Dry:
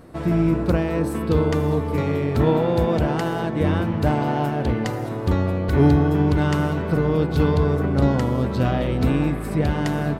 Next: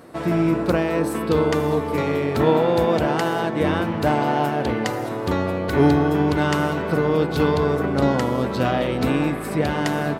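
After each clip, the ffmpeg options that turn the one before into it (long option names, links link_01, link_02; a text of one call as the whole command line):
ffmpeg -i in.wav -af "highpass=frequency=350:poles=1,volume=4.5dB" out.wav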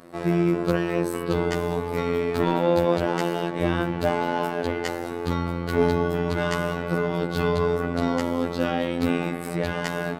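ffmpeg -i in.wav -af "asoftclip=type=hard:threshold=-9dB,afftfilt=real='hypot(re,im)*cos(PI*b)':imag='0':win_size=2048:overlap=0.75" out.wav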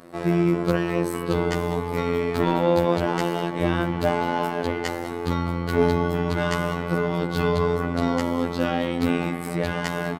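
ffmpeg -i in.wav -filter_complex "[0:a]asplit=2[link_01][link_02];[link_02]adelay=198.3,volume=-15dB,highshelf=frequency=4000:gain=-4.46[link_03];[link_01][link_03]amix=inputs=2:normalize=0,volume=1dB" out.wav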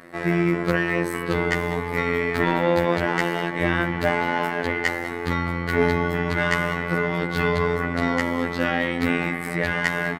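ffmpeg -i in.wav -af "equalizer=frequency=1900:width_type=o:width=0.67:gain=13,volume=-1dB" out.wav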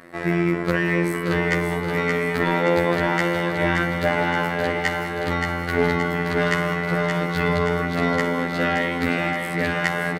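ffmpeg -i in.wav -af "aecho=1:1:574|1148|1722|2296|2870|3444|4018|4592:0.562|0.326|0.189|0.11|0.0636|0.0369|0.0214|0.0124" out.wav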